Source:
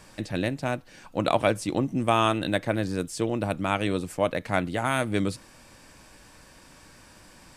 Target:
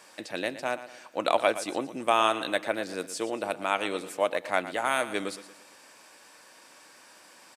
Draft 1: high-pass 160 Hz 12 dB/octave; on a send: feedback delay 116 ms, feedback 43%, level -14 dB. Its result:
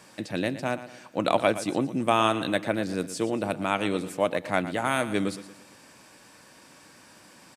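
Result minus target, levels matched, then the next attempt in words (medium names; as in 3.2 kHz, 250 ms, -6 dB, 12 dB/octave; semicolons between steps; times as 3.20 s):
125 Hz band +13.0 dB
high-pass 440 Hz 12 dB/octave; on a send: feedback delay 116 ms, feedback 43%, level -14 dB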